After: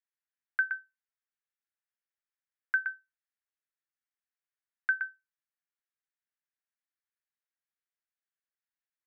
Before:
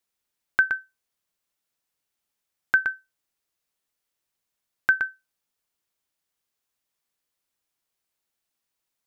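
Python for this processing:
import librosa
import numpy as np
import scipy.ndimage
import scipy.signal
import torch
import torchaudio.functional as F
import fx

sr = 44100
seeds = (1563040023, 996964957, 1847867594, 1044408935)

y = fx.bandpass_q(x, sr, hz=1700.0, q=2.9)
y = y * librosa.db_to_amplitude(-6.5)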